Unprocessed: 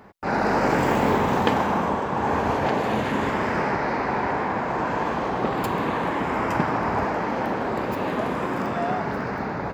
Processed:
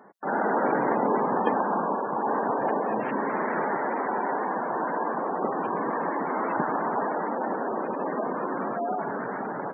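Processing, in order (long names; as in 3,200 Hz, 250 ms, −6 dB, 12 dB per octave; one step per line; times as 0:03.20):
high-pass filter 240 Hz 12 dB per octave
gate on every frequency bin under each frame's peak −15 dB strong
parametric band 2,200 Hz −6 dB 0.26 octaves
level −2 dB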